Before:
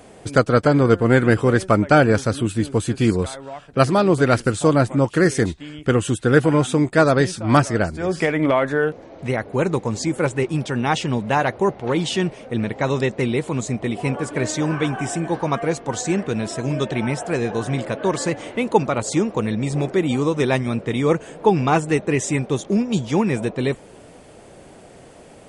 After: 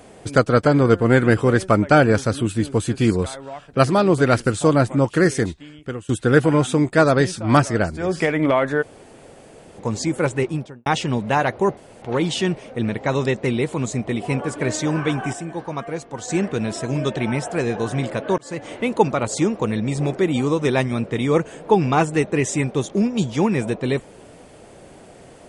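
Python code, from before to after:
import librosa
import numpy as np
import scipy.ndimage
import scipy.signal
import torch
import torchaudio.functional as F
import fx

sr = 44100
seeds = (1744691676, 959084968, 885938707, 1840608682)

y = fx.studio_fade_out(x, sr, start_s=10.41, length_s=0.45)
y = fx.edit(y, sr, fx.fade_out_to(start_s=5.24, length_s=0.85, floor_db=-20.5),
    fx.room_tone_fill(start_s=8.82, length_s=0.97, crossfade_s=0.02),
    fx.insert_room_tone(at_s=11.77, length_s=0.25),
    fx.clip_gain(start_s=15.08, length_s=0.95, db=-6.5),
    fx.fade_in_span(start_s=18.13, length_s=0.36), tone=tone)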